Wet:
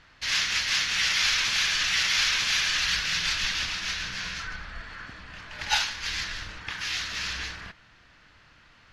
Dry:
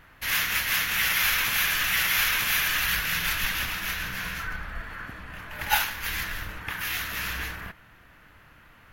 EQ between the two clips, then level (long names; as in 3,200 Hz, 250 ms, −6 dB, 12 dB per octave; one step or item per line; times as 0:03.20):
low-pass filter 8,100 Hz 24 dB per octave
parametric band 4,700 Hz +12.5 dB 1.2 octaves
−4.5 dB